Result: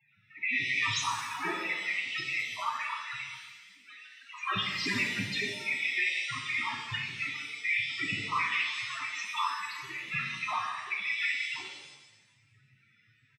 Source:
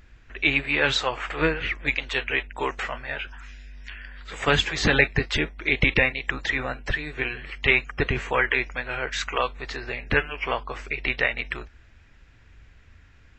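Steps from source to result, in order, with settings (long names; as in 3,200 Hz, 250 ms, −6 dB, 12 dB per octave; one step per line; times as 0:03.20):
lower of the sound and its delayed copy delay 0.93 ms
single-tap delay 313 ms −22 dB
cochlear-implant simulation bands 12
spectral tilt +2 dB per octave
spectral peaks only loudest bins 8
brickwall limiter −23 dBFS, peak gain reduction 10 dB
reverb with rising layers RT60 1.1 s, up +7 semitones, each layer −8 dB, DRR 0.5 dB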